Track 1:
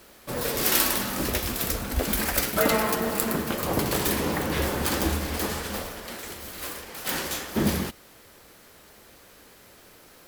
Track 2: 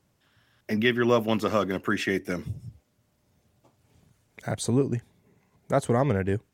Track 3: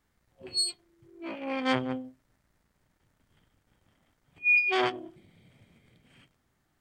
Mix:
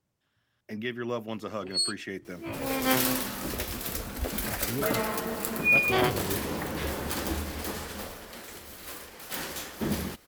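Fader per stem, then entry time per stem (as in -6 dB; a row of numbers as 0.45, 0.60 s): -6.0, -10.5, +0.5 dB; 2.25, 0.00, 1.20 s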